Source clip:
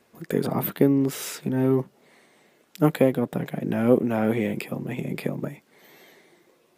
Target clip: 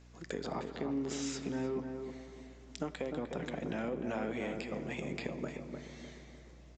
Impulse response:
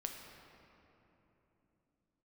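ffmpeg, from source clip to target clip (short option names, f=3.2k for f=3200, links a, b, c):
-filter_complex "[0:a]highpass=f=370:p=1,aemphasis=mode=production:type=50kf,alimiter=limit=-15dB:level=0:latency=1:release=176,acompressor=threshold=-29dB:ratio=6,aeval=exprs='val(0)+0.00251*(sin(2*PI*60*n/s)+sin(2*PI*2*60*n/s)/2+sin(2*PI*3*60*n/s)/3+sin(2*PI*4*60*n/s)/4+sin(2*PI*5*60*n/s)/5)':c=same,asplit=2[a][b];[b]adelay=303,lowpass=f=1.2k:p=1,volume=-5dB,asplit=2[c][d];[d]adelay=303,lowpass=f=1.2k:p=1,volume=0.4,asplit=2[e][f];[f]adelay=303,lowpass=f=1.2k:p=1,volume=0.4,asplit=2[g][h];[h]adelay=303,lowpass=f=1.2k:p=1,volume=0.4,asplit=2[i][j];[j]adelay=303,lowpass=f=1.2k:p=1,volume=0.4[k];[a][c][e][g][i][k]amix=inputs=6:normalize=0,asplit=2[l][m];[1:a]atrim=start_sample=2205[n];[m][n]afir=irnorm=-1:irlink=0,volume=-3.5dB[o];[l][o]amix=inputs=2:normalize=0,aresample=16000,aresample=44100,volume=-8dB"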